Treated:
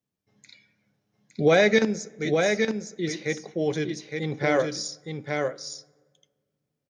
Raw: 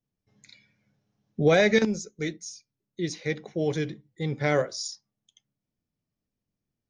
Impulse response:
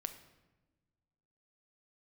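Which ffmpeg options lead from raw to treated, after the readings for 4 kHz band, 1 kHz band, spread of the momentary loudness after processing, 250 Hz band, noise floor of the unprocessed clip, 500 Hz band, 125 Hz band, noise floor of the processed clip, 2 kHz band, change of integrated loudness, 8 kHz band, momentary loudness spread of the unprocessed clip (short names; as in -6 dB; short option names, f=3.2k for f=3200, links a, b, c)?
+2.5 dB, +3.0 dB, 15 LU, +1.5 dB, under -85 dBFS, +3.0 dB, -1.0 dB, -83 dBFS, +3.0 dB, +1.5 dB, +2.5 dB, 17 LU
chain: -filter_complex "[0:a]highpass=f=180:p=1,aecho=1:1:863:0.596,asplit=2[a][b];[1:a]atrim=start_sample=2205,asetrate=29547,aresample=44100,highshelf=f=4.9k:g=-8.5[c];[b][c]afir=irnorm=-1:irlink=0,volume=-11dB[d];[a][d]amix=inputs=2:normalize=0"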